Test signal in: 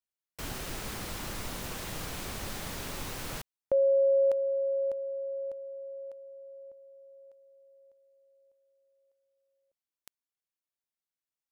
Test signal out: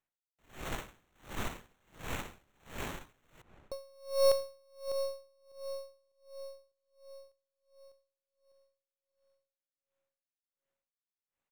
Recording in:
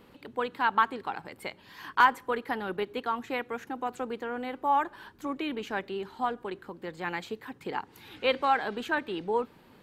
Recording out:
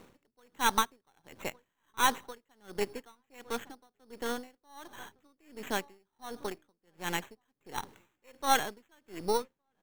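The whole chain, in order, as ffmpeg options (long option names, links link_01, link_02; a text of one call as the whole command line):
ffmpeg -i in.wav -filter_complex "[0:a]aeval=exprs='if(lt(val(0),0),0.447*val(0),val(0))':channel_layout=same,acrusher=samples=9:mix=1:aa=0.000001,asplit=2[link_01][link_02];[link_02]adelay=1161,lowpass=frequency=1600:poles=1,volume=-21dB,asplit=2[link_03][link_04];[link_04]adelay=1161,lowpass=frequency=1600:poles=1,volume=0.26[link_05];[link_03][link_05]amix=inputs=2:normalize=0[link_06];[link_01][link_06]amix=inputs=2:normalize=0,aeval=exprs='val(0)*pow(10,-37*(0.5-0.5*cos(2*PI*1.4*n/s))/20)':channel_layout=same,volume=3.5dB" out.wav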